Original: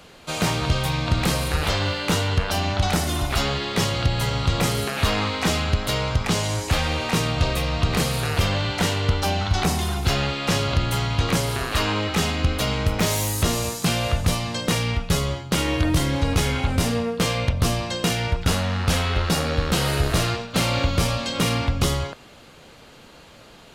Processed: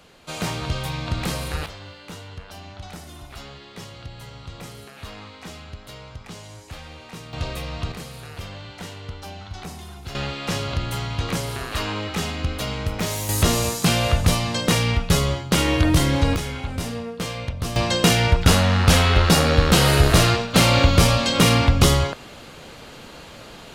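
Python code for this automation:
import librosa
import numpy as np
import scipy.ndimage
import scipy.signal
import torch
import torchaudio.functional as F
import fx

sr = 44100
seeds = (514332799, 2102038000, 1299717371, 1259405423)

y = fx.gain(x, sr, db=fx.steps((0.0, -4.5), (1.66, -16.5), (7.33, -7.0), (7.92, -14.0), (10.15, -4.0), (13.29, 3.0), (16.36, -6.5), (17.76, 6.0)))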